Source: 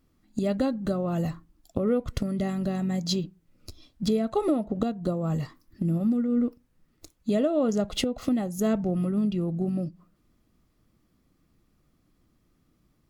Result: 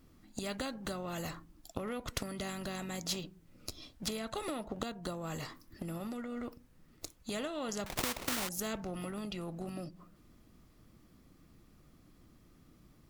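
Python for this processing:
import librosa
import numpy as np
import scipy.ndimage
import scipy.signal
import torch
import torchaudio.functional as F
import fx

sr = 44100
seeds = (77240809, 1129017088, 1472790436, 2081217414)

y = fx.sample_hold(x, sr, seeds[0], rate_hz=1600.0, jitter_pct=20, at=(7.86, 8.49))
y = fx.spectral_comp(y, sr, ratio=2.0)
y = F.gain(torch.from_numpy(y), -4.0).numpy()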